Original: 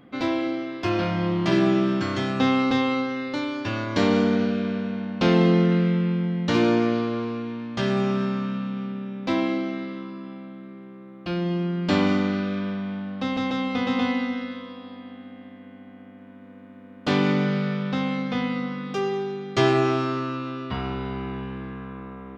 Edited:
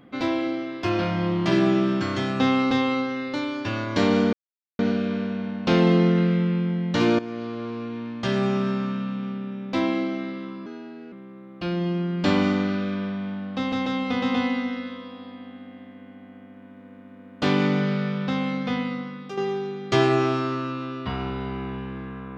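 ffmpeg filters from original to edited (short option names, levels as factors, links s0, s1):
-filter_complex "[0:a]asplit=6[s0][s1][s2][s3][s4][s5];[s0]atrim=end=4.33,asetpts=PTS-STARTPTS,afade=t=out:st=4.326:d=0.004:c=hsin,apad=pad_dur=0.46[s6];[s1]atrim=start=4.33:end=6.73,asetpts=PTS-STARTPTS,afade=t=in:d=0.004:c=hsin,afade=t=out:st=2.396:d=0.004:c=hsin:silence=0.16788[s7];[s2]atrim=start=6.73:end=10.204,asetpts=PTS-STARTPTS,afade=t=in:d=0.85:silence=0.16788[s8];[s3]atrim=start=10.2:end=10.77,asetpts=PTS-STARTPTS,asetrate=54243,aresample=44100[s9];[s4]atrim=start=10.766:end=19.02,asetpts=PTS-STARTPTS,afade=t=out:st=7.604:d=0.65:silence=0.354813[s10];[s5]atrim=start=19.02,asetpts=PTS-STARTPTS,afade=t=in:d=0.004:c=hsin:silence=0.354813[s11];[s6][s7][s8]concat=n=3:v=0:a=1[s12];[s12][s9]acrossfade=d=0.004:c1=hsin:c2=hsin[s13];[s10][s11]concat=n=2:v=0:a=1[s14];[s13][s14]acrossfade=d=0.004:c1=hsin:c2=hsin"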